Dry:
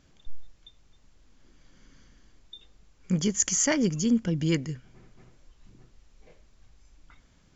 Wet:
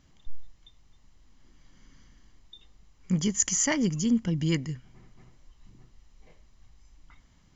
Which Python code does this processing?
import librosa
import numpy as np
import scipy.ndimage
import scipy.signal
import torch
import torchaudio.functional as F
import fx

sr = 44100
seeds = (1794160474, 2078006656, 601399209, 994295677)

y = x + 0.34 * np.pad(x, (int(1.0 * sr / 1000.0), 0))[:len(x)]
y = y * librosa.db_to_amplitude(-1.5)